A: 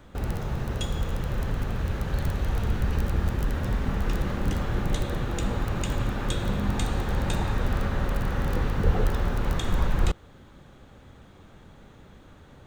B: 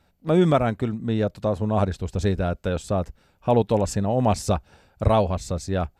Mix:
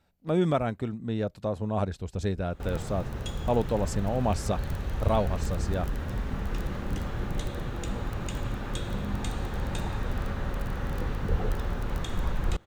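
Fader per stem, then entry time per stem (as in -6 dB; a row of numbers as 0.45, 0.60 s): -5.0, -6.5 dB; 2.45, 0.00 s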